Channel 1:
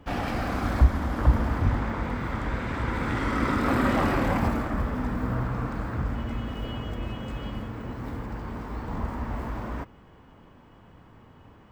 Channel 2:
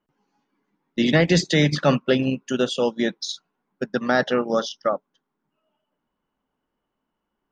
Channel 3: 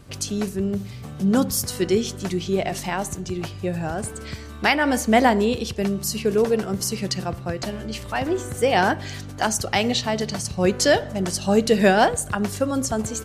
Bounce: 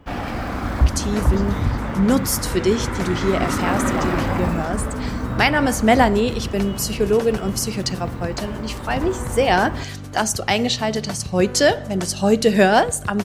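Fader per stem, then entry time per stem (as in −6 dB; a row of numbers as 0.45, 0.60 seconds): +2.5, −18.5, +2.0 decibels; 0.00, 0.00, 0.75 seconds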